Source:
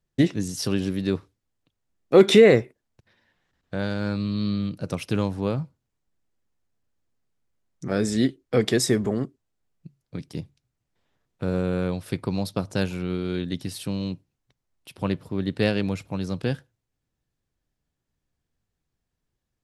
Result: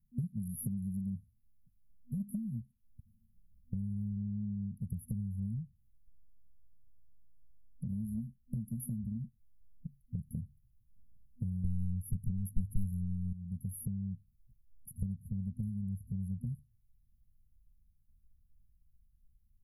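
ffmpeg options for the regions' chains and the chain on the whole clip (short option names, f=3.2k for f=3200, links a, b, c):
-filter_complex "[0:a]asettb=1/sr,asplit=3[a][b][c];[a]atrim=end=11.644[d];[b]atrim=start=11.64:end=13.33,asetpts=PTS-STARTPTS,afade=t=in:d=0.004:c=qsin,afade=t=out:st=1.686:d=0.004:c=qsin,bandreject=f=210:w=7,aeval=exprs='0.316*sin(PI/2*3.55*val(0)/0.316)':c=same[e];[c]atrim=start=13.326[f];[d][e]acrossfade=d=0.004:c1=hsin:c2=qsin[g];[g][f]acrossfade=d=0.004:c1=qsin:c2=hsin,afftfilt=real='re*(1-between(b*sr/4096,240,10000))':imag='im*(1-between(b*sr/4096,240,10000))':win_size=4096:overlap=0.75,acompressor=threshold=-37dB:ratio=16,asubboost=boost=5.5:cutoff=61,volume=4.5dB"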